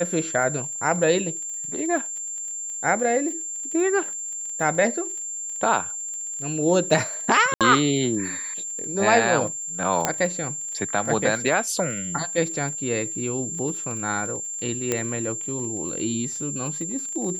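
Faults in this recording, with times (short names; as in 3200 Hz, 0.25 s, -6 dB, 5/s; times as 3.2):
crackle 25/s -32 dBFS
tone 7300 Hz -29 dBFS
7.54–7.61 gap 67 ms
10.05 pop -4 dBFS
14.92 pop -8 dBFS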